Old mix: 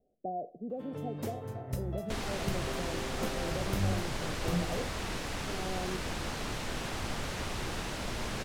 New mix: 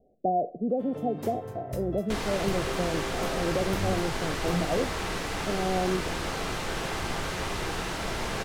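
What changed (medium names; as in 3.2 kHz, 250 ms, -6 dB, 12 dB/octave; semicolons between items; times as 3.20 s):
speech +11.0 dB; second sound +3.5 dB; reverb: on, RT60 0.60 s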